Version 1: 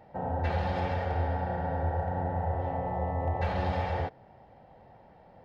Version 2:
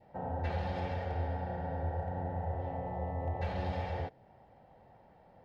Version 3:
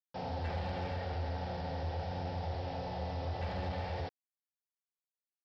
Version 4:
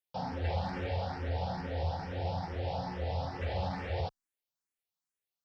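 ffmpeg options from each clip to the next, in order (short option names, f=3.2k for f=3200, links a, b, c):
-af "adynamicequalizer=threshold=0.00282:dfrequency=1200:dqfactor=1.4:tfrequency=1200:tqfactor=1.4:attack=5:release=100:ratio=0.375:range=2.5:mode=cutabove:tftype=bell,volume=-5dB"
-af "aresample=11025,acrusher=bits=7:mix=0:aa=0.000001,aresample=44100,asoftclip=type=tanh:threshold=-30dB"
-filter_complex "[0:a]asplit=2[a][b];[b]afreqshift=2.3[c];[a][c]amix=inputs=2:normalize=1,volume=5.5dB"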